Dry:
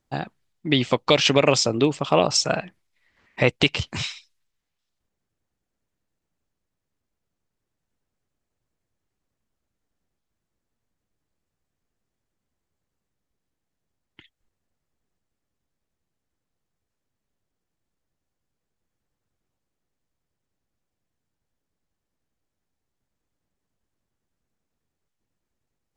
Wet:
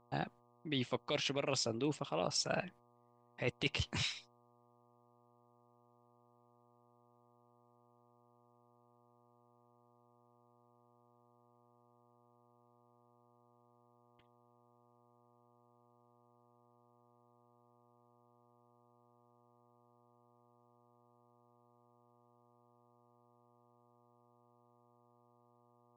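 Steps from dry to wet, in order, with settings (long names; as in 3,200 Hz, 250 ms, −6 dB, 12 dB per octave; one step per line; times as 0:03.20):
noise gate −47 dBFS, range −27 dB
reversed playback
downward compressor 12 to 1, threshold −25 dBFS, peak gain reduction 14.5 dB
reversed playback
hum with harmonics 120 Hz, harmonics 10, −63 dBFS −1 dB per octave
level −7 dB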